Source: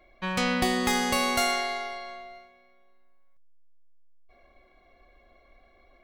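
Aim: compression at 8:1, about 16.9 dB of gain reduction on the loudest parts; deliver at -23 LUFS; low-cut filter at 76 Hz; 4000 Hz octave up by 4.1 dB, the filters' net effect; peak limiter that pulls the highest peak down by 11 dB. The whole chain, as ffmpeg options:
-af "highpass=76,equalizer=f=4k:t=o:g=5,acompressor=threshold=-38dB:ratio=8,volume=20dB,alimiter=limit=-14.5dB:level=0:latency=1"

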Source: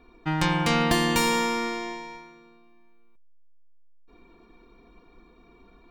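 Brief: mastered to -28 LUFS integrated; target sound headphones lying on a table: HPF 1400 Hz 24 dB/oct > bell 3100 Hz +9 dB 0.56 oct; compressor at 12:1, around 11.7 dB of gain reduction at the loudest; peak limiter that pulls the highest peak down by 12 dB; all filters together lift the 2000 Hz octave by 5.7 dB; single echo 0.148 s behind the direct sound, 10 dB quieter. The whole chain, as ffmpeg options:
-af "equalizer=f=2k:t=o:g=4.5,acompressor=threshold=-29dB:ratio=12,alimiter=level_in=5.5dB:limit=-24dB:level=0:latency=1,volume=-5.5dB,highpass=f=1.4k:w=0.5412,highpass=f=1.4k:w=1.3066,equalizer=f=3.1k:t=o:w=0.56:g=9,aecho=1:1:148:0.316,volume=9dB"

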